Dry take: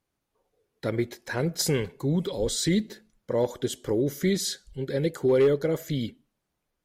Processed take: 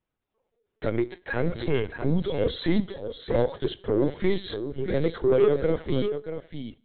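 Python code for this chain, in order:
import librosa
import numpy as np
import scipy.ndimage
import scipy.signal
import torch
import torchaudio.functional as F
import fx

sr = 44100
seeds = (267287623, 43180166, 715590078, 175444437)

p1 = fx.leveller(x, sr, passes=1)
p2 = p1 + fx.echo_single(p1, sr, ms=633, db=-9.0, dry=0)
p3 = fx.rev_schroeder(p2, sr, rt60_s=0.54, comb_ms=32, drr_db=20.0)
p4 = fx.lpc_vocoder(p3, sr, seeds[0], excitation='pitch_kept', order=16)
y = p4 * librosa.db_to_amplitude(-1.0)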